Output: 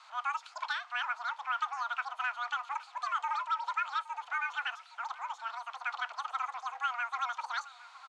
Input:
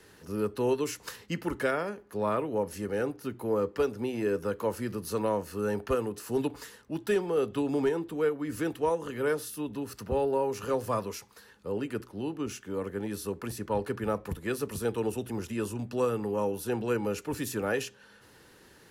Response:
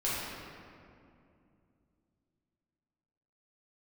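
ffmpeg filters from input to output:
-filter_complex "[0:a]aeval=exprs='val(0)+0.5*0.00562*sgn(val(0))':channel_layout=same,highpass=frequency=280:width_type=q:width=0.5412,highpass=frequency=280:width_type=q:width=1.307,lowpass=frequency=3500:width_type=q:width=0.5176,lowpass=frequency=3500:width_type=q:width=0.7071,lowpass=frequency=3500:width_type=q:width=1.932,afreqshift=100,bandreject=frequency=500:width=15,asetrate=103194,aresample=44100,aemphasis=mode=reproduction:type=riaa,asplit=2[link_01][link_02];[link_02]adelay=816.3,volume=-17dB,highshelf=frequency=4000:gain=-18.4[link_03];[link_01][link_03]amix=inputs=2:normalize=0,volume=-2.5dB"

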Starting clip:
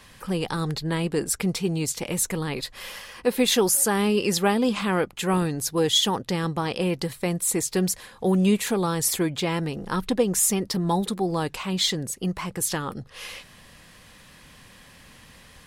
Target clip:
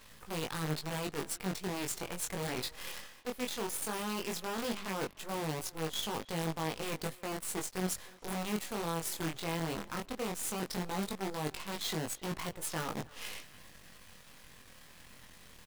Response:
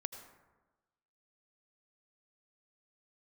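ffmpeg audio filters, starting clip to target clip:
-filter_complex "[0:a]areverse,acompressor=threshold=-31dB:ratio=20,areverse,acrusher=bits=6:dc=4:mix=0:aa=0.000001,flanger=delay=18.5:depth=5.8:speed=0.16,asplit=2[link_01][link_02];[link_02]adelay=300,highpass=300,lowpass=3400,asoftclip=type=hard:threshold=-33dB,volume=-20dB[link_03];[link_01][link_03]amix=inputs=2:normalize=0"

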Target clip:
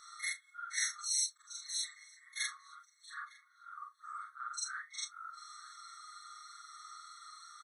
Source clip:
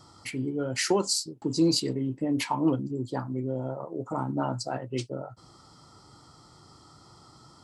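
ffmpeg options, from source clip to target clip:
ffmpeg -i in.wav -filter_complex "[0:a]afftfilt=real='re':imag='-im':win_size=4096:overlap=0.75,bandreject=frequency=141.3:width_type=h:width=4,bandreject=frequency=282.6:width_type=h:width=4,bandreject=frequency=423.9:width_type=h:width=4,adynamicequalizer=threshold=0.00355:dfrequency=7900:dqfactor=0.72:tfrequency=7900:tqfactor=0.72:attack=5:release=100:ratio=0.375:range=2:mode=boostabove:tftype=bell,areverse,acompressor=threshold=-38dB:ratio=10,areverse,aecho=1:1:6.5:0.99,asplit=2[link_01][link_02];[link_02]adelay=906,lowpass=frequency=2500:poles=1,volume=-19dB,asplit=2[link_03][link_04];[link_04]adelay=906,lowpass=frequency=2500:poles=1,volume=0.4,asplit=2[link_05][link_06];[link_06]adelay=906,lowpass=frequency=2500:poles=1,volume=0.4[link_07];[link_01][link_03][link_05][link_07]amix=inputs=4:normalize=0,afftfilt=real='re*eq(mod(floor(b*sr/1024/1100),2),1)':imag='im*eq(mod(floor(b*sr/1024/1100),2),1)':win_size=1024:overlap=0.75,volume=8.5dB" out.wav

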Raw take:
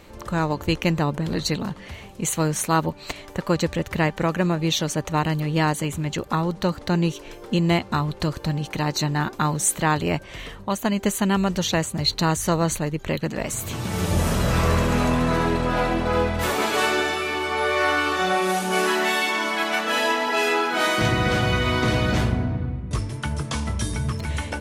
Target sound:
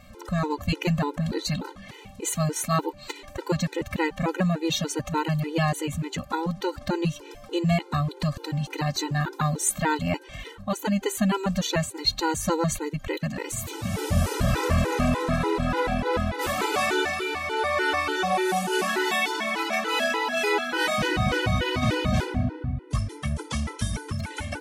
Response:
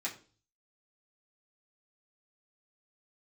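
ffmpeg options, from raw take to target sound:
-af "afftfilt=real='re*gt(sin(2*PI*3.4*pts/sr)*(1-2*mod(floor(b*sr/1024/260),2)),0)':imag='im*gt(sin(2*PI*3.4*pts/sr)*(1-2*mod(floor(b*sr/1024/260),2)),0)':win_size=1024:overlap=0.75"

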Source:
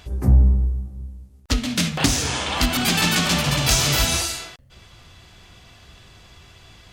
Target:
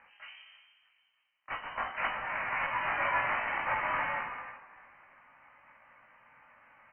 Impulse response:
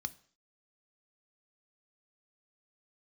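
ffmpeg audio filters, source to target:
-filter_complex "[0:a]aeval=exprs='if(lt(val(0),0),0.708*val(0),val(0))':channel_layout=same,highpass=1100,asplit=4[link_01][link_02][link_03][link_04];[link_02]asetrate=22050,aresample=44100,atempo=2,volume=-9dB[link_05];[link_03]asetrate=35002,aresample=44100,atempo=1.25992,volume=-8dB[link_06];[link_04]asetrate=66075,aresample=44100,atempo=0.66742,volume=-3dB[link_07];[link_01][link_05][link_06][link_07]amix=inputs=4:normalize=0,asplit=2[link_08][link_09];[link_09]adelay=19,volume=-2dB[link_10];[link_08][link_10]amix=inputs=2:normalize=0,asplit=4[link_11][link_12][link_13][link_14];[link_12]adelay=315,afreqshift=58,volume=-17.5dB[link_15];[link_13]adelay=630,afreqshift=116,volume=-25dB[link_16];[link_14]adelay=945,afreqshift=174,volume=-32.6dB[link_17];[link_11][link_15][link_16][link_17]amix=inputs=4:normalize=0[link_18];[1:a]atrim=start_sample=2205[link_19];[link_18][link_19]afir=irnorm=-1:irlink=0,lowpass=frequency=2700:width_type=q:width=0.5098,lowpass=frequency=2700:width_type=q:width=0.6013,lowpass=frequency=2700:width_type=q:width=0.9,lowpass=frequency=2700:width_type=q:width=2.563,afreqshift=-3200,volume=-6dB"

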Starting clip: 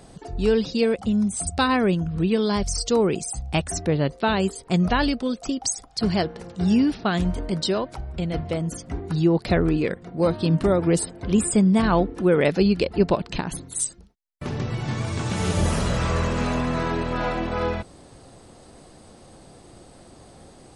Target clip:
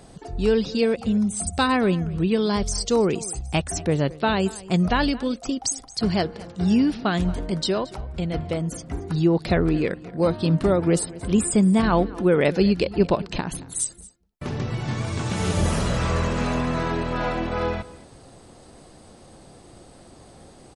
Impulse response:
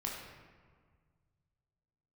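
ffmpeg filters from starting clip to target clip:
-af "aecho=1:1:225:0.1"

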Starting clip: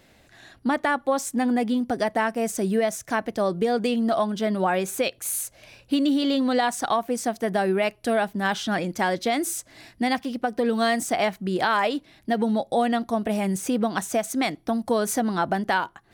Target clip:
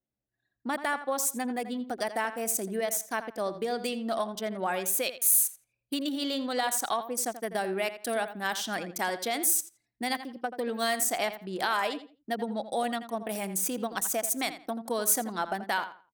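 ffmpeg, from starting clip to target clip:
ffmpeg -i in.wav -filter_complex "[0:a]highpass=52,aemphasis=mode=production:type=bsi,anlmdn=25.1,asplit=2[link_01][link_02];[link_02]adelay=84,lowpass=frequency=3600:poles=1,volume=-11.5dB,asplit=2[link_03][link_04];[link_04]adelay=84,lowpass=frequency=3600:poles=1,volume=0.25,asplit=2[link_05][link_06];[link_06]adelay=84,lowpass=frequency=3600:poles=1,volume=0.25[link_07];[link_03][link_05][link_07]amix=inputs=3:normalize=0[link_08];[link_01][link_08]amix=inputs=2:normalize=0,volume=-6.5dB" out.wav

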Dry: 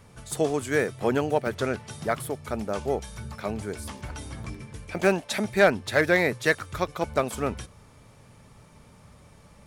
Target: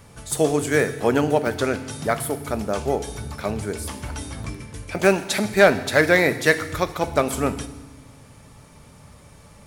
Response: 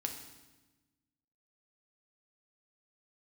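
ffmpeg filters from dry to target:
-filter_complex "[0:a]asplit=2[link_01][link_02];[1:a]atrim=start_sample=2205,highshelf=frequency=4900:gain=8.5[link_03];[link_02][link_03]afir=irnorm=-1:irlink=0,volume=-2.5dB[link_04];[link_01][link_04]amix=inputs=2:normalize=0"

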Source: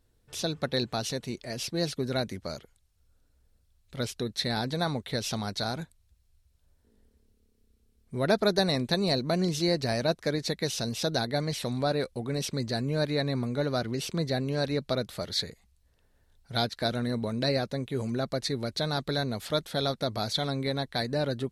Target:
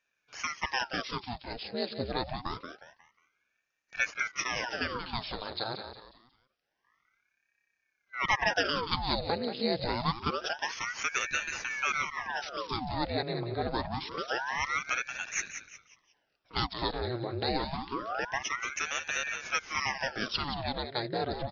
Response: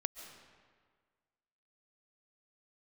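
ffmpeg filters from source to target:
-filter_complex "[0:a]asettb=1/sr,asplit=3[link_01][link_02][link_03];[link_01]atrim=end=2.294[link_04];[link_02]atrim=start=2.29:end=4.22,asetpts=PTS-STARTPTS,afade=type=in:duration=0.004:curve=qsin,afade=type=out:start_time=1.926:duration=0.004:curve=qsin,lowshelf=frequency=450:gain=10.5[link_05];[link_03]atrim=start=4.216[link_06];[link_04][link_05]acrossfade=duration=0.004:curve1=hsin:curve2=qsin[link_07];[link_07][link_06]acrossfade=duration=0.004:curve1=qsin:curve2=hsin,asplit=2[link_08][link_09];[link_09]aecho=0:1:180|360|540|720:0.355|0.124|0.0435|0.0152[link_10];[link_08][link_10]amix=inputs=2:normalize=0,afftfilt=real='re*between(b*sr/4096,220,5000)':imag='im*between(b*sr/4096,220,5000)':win_size=4096:overlap=0.75,aeval=exprs='val(0)*sin(2*PI*1100*n/s+1100*0.9/0.26*sin(2*PI*0.26*n/s))':channel_layout=same"

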